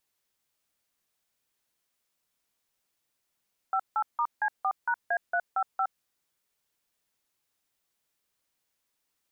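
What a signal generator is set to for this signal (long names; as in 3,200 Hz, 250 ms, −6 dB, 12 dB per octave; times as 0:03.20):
touch tones "58*C4#A355", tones 66 ms, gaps 163 ms, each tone −26.5 dBFS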